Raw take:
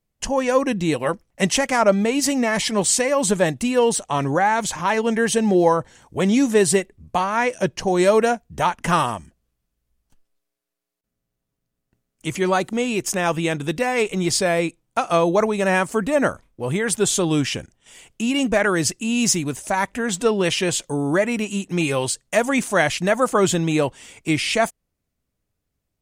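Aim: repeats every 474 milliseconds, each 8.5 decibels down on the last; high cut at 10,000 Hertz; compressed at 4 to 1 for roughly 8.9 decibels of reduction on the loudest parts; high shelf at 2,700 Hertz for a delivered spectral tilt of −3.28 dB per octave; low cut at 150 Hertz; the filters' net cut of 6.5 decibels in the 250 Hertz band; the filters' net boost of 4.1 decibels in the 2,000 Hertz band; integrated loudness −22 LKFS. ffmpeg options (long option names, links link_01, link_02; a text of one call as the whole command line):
ffmpeg -i in.wav -af "highpass=150,lowpass=10000,equalizer=frequency=250:width_type=o:gain=-8,equalizer=frequency=2000:width_type=o:gain=7.5,highshelf=frequency=2700:gain=-5.5,acompressor=threshold=-23dB:ratio=4,aecho=1:1:474|948|1422|1896:0.376|0.143|0.0543|0.0206,volume=4.5dB" out.wav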